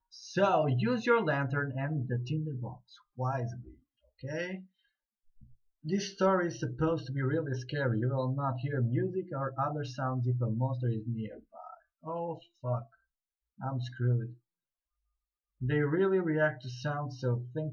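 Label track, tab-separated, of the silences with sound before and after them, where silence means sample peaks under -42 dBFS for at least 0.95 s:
4.600000	5.850000	silence
14.320000	15.610000	silence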